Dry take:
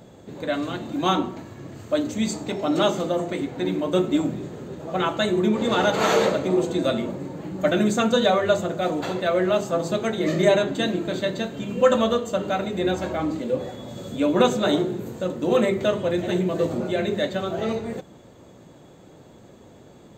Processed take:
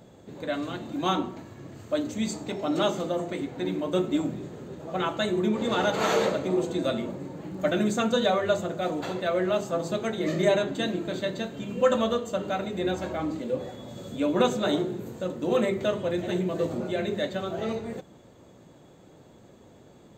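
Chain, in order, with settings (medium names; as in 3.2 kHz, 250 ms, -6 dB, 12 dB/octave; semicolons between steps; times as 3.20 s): 7.49–7.91 s: crackle 99 per s -43 dBFS; trim -4.5 dB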